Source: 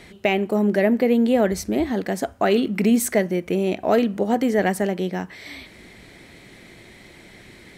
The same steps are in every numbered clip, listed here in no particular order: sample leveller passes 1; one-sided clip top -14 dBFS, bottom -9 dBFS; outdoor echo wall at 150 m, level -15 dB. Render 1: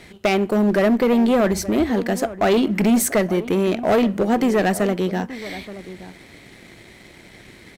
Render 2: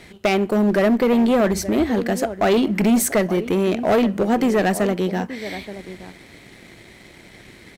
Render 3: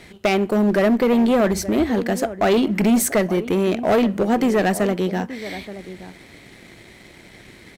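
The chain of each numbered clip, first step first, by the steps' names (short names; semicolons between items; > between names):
sample leveller > one-sided clip > outdoor echo; outdoor echo > sample leveller > one-sided clip; sample leveller > outdoor echo > one-sided clip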